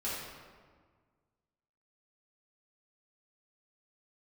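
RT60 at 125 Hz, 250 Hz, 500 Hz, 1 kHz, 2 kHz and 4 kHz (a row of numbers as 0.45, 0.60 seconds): 2.1, 1.9, 1.6, 1.6, 1.3, 1.0 seconds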